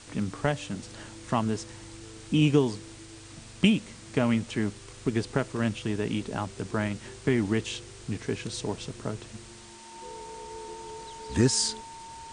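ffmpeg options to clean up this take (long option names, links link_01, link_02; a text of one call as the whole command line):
ffmpeg -i in.wav -af "bandreject=frequency=910:width=30,afftdn=noise_reduction=26:noise_floor=-46" out.wav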